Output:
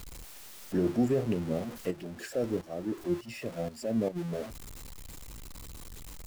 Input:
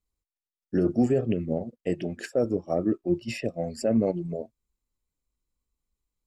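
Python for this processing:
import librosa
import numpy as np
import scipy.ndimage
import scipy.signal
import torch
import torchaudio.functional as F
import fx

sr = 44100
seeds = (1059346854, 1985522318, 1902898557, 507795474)

y = x + 0.5 * 10.0 ** (-32.5 / 20.0) * np.sign(x)
y = fx.tremolo_shape(y, sr, shape='saw_up', hz=fx.line((1.9, 1.1), (4.15, 2.8)), depth_pct=75, at=(1.9, 4.15), fade=0.02)
y = y * librosa.db_to_amplitude(-5.0)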